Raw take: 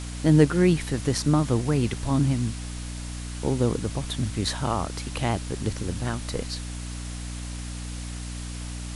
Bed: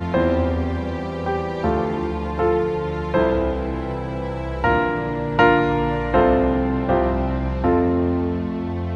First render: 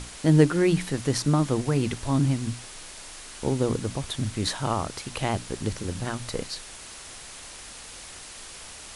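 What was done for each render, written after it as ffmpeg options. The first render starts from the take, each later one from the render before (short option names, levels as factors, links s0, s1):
-af "bandreject=f=60:t=h:w=6,bandreject=f=120:t=h:w=6,bandreject=f=180:t=h:w=6,bandreject=f=240:t=h:w=6,bandreject=f=300:t=h:w=6"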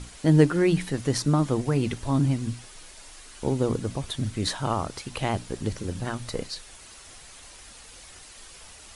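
-af "afftdn=nr=7:nf=-43"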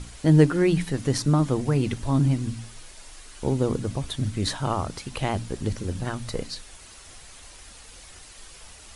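-af "lowshelf=f=140:g=5,bandreject=f=56.85:t=h:w=4,bandreject=f=113.7:t=h:w=4,bandreject=f=170.55:t=h:w=4,bandreject=f=227.4:t=h:w=4,bandreject=f=284.25:t=h:w=4"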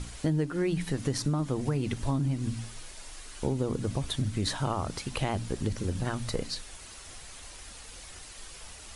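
-af "acompressor=threshold=0.0562:ratio=6"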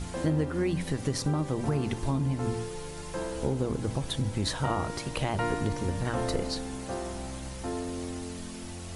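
-filter_complex "[1:a]volume=0.15[s0];[0:a][s0]amix=inputs=2:normalize=0"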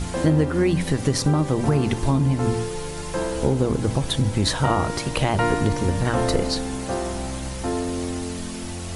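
-af "volume=2.66"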